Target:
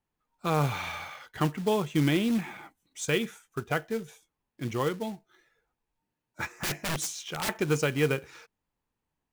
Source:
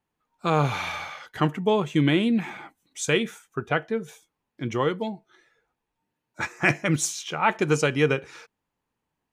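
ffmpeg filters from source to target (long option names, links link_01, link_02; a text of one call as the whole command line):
ffmpeg -i in.wav -filter_complex "[0:a]lowshelf=frequency=67:gain=11,acrusher=bits=4:mode=log:mix=0:aa=0.000001,asettb=1/sr,asplit=3[link_01][link_02][link_03];[link_01]atrim=end=6.574[link_04];[link_02]atrim=start=6.57:end=7.49,asetpts=PTS-STARTPTS,afade=type=in:duration=0.004:curve=qsin,afade=type=out:start_time=0.916:duration=0.004:curve=qsin,aeval=exprs='(mod(10.6*val(0)+1,2)-1)/10.6':channel_layout=same[link_05];[link_03]atrim=start=7.486[link_06];[link_04][link_05]acrossfade=duration=0.004:curve1=hsin:curve2=qsin[link_07];[link_07][link_06]acrossfade=duration=0.004:curve1=qsin:curve2=hsin,volume=-5dB" out.wav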